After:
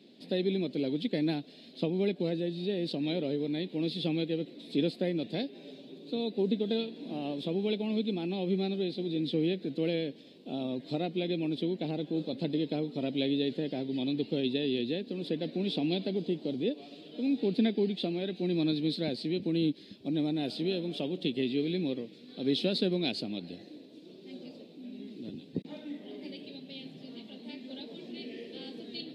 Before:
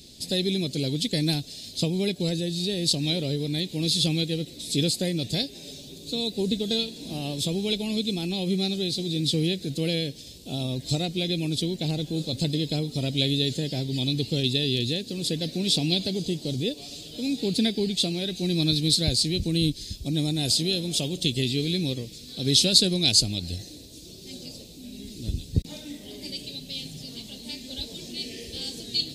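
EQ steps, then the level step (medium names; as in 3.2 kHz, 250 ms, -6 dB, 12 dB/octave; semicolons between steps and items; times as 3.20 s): high-pass 210 Hz 24 dB/octave; dynamic bell 6.8 kHz, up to -5 dB, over -44 dBFS, Q 2.1; distance through air 480 m; 0.0 dB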